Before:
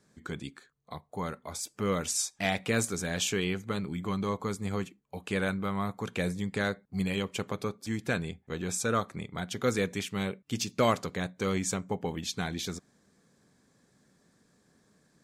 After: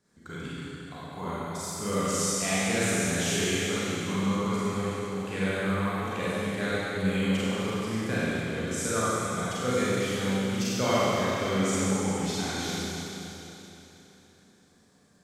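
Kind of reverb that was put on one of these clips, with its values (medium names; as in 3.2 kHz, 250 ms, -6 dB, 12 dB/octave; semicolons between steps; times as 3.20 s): Schroeder reverb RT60 3.4 s, combs from 32 ms, DRR -10 dB; trim -6.5 dB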